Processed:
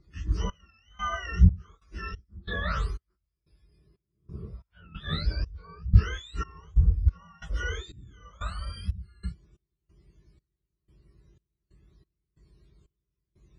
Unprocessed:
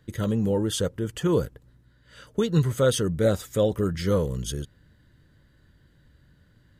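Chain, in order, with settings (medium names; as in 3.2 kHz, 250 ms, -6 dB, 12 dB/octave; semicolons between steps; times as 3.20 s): spectrum inverted on a logarithmic axis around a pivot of 1.1 kHz; RIAA curve playback; trance gate "xxx...xxx..xx.." 182 bpm -24 dB; speed mistake 15 ips tape played at 7.5 ips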